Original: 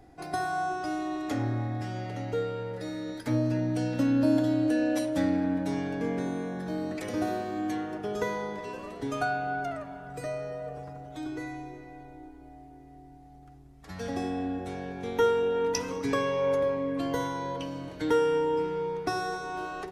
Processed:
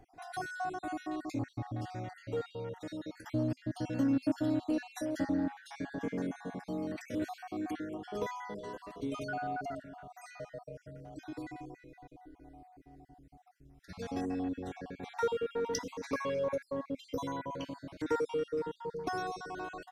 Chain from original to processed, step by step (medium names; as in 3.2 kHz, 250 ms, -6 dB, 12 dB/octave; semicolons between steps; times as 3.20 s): random holes in the spectrogram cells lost 45%; dynamic bell 260 Hz, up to +3 dB, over -47 dBFS, Q 5.5; in parallel at -9 dB: hard clipper -27 dBFS, distortion -9 dB; on the sum: trim -7 dB